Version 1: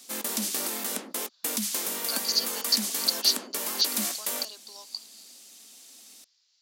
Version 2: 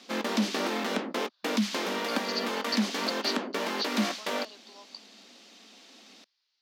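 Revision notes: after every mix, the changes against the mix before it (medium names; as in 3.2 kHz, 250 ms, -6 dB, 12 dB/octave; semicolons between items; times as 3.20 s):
background +8.5 dB; master: add distance through air 240 m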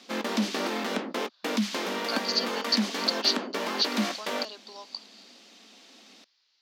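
speech +7.5 dB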